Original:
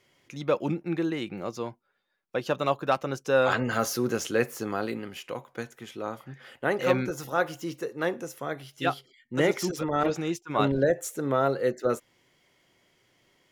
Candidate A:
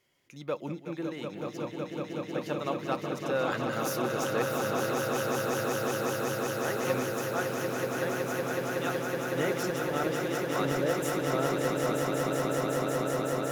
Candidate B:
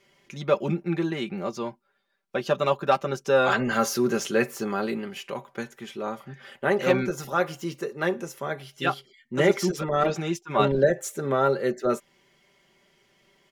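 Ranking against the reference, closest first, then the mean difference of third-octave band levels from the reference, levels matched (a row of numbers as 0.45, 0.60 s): B, A; 1.5, 11.5 dB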